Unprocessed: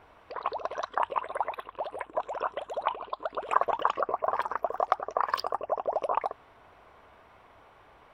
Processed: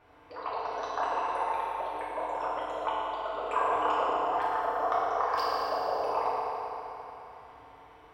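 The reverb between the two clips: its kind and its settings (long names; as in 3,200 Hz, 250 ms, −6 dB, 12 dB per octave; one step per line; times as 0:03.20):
feedback delay network reverb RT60 3.2 s, high-frequency decay 0.95×, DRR −9 dB
level −8.5 dB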